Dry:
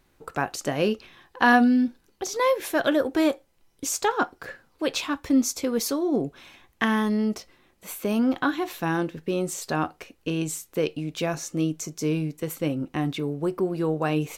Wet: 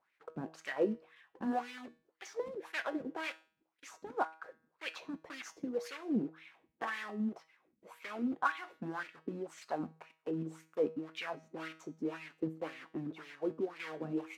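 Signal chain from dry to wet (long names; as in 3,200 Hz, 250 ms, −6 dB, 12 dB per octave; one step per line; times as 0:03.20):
one scale factor per block 3 bits
harmonic and percussive parts rebalanced harmonic −8 dB
LFO wah 1.9 Hz 210–2,300 Hz, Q 3.3
tuned comb filter 160 Hz, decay 0.43 s, harmonics all, mix 60%
0:02.52–0:04.86: shaped tremolo saw down 1.9 Hz, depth 40%
level +6.5 dB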